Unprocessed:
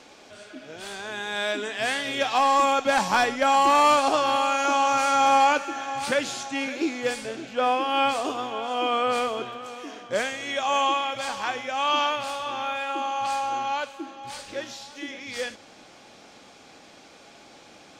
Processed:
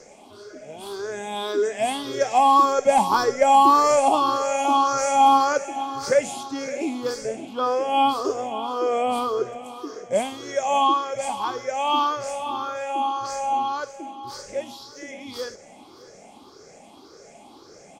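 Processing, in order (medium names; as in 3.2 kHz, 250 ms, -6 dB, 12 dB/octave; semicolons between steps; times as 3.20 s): drifting ripple filter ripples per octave 0.55, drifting +1.8 Hz, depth 14 dB; high-order bell 2.4 kHz -9.5 dB; small resonant body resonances 400/2100/3300 Hz, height 8 dB; on a send: delay 616 ms -21 dB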